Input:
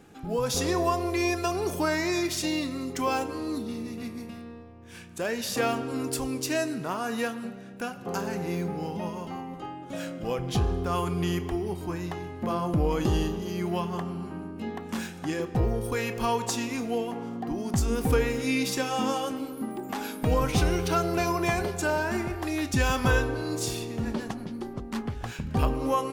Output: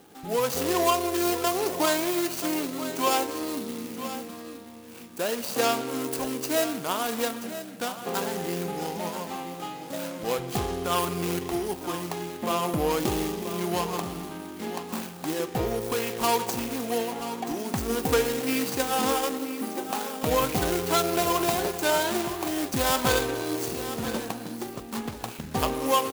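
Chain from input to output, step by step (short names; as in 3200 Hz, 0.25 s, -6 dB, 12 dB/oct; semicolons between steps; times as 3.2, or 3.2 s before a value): median filter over 25 samples; RIAA curve recording; echo 0.981 s -12 dB; gain +5.5 dB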